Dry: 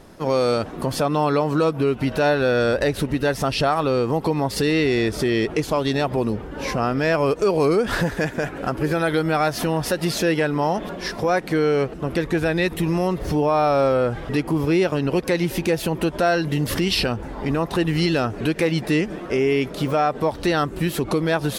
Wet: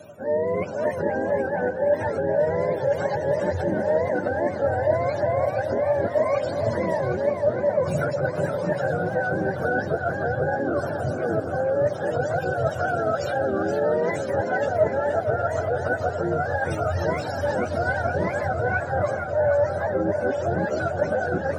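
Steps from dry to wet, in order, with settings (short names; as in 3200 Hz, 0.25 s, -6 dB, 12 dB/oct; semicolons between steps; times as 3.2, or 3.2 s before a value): spectrum mirrored in octaves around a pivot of 490 Hz; bell 580 Hz +14.5 dB 0.22 oct; reverse; compressor, threshold -23 dBFS, peak gain reduction 17.5 dB; reverse; small resonant body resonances 620/1500 Hz, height 6 dB; on a send: dark delay 0.767 s, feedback 54%, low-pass 2600 Hz, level -9 dB; on the sum: warbling echo 0.469 s, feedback 39%, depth 170 cents, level -7.5 dB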